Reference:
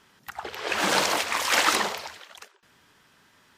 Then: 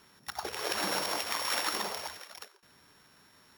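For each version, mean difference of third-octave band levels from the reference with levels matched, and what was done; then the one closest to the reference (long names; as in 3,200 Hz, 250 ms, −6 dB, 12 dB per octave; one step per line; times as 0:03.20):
6.0 dB: samples sorted by size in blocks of 8 samples
downward compressor 4 to 1, threshold −29 dBFS, peak gain reduction 11 dB
level −1 dB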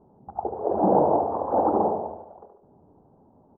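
18.0 dB: elliptic low-pass filter 810 Hz, stop band 60 dB
on a send: repeating echo 73 ms, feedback 51%, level −7 dB
on the sum: level +9 dB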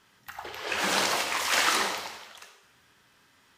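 2.0 dB: parametric band 370 Hz −2.5 dB 2.7 octaves
dense smooth reverb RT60 0.94 s, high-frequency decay 0.95×, DRR 2.5 dB
level −3.5 dB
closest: third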